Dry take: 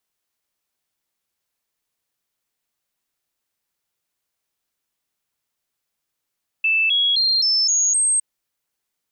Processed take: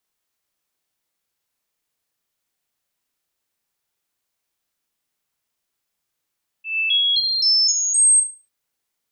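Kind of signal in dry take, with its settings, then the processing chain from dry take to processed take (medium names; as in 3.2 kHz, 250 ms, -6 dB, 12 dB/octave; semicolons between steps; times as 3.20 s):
stepped sine 2.64 kHz up, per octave 3, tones 6, 0.26 s, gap 0.00 s -15 dBFS
slow attack 158 ms; on a send: flutter echo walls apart 6.2 m, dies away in 0.32 s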